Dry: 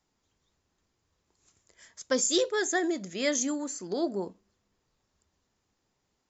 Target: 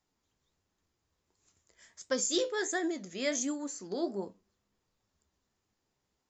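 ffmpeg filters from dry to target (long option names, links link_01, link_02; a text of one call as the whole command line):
ffmpeg -i in.wav -af "flanger=delay=9.3:depth=6.5:regen=65:speed=1.4:shape=sinusoidal" out.wav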